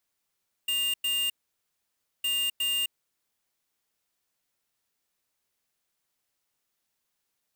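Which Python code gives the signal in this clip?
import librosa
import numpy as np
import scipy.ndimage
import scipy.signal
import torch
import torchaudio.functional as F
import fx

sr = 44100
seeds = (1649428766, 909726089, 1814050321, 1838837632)

y = fx.beep_pattern(sr, wave='square', hz=2810.0, on_s=0.26, off_s=0.1, beeps=2, pause_s=0.94, groups=2, level_db=-27.5)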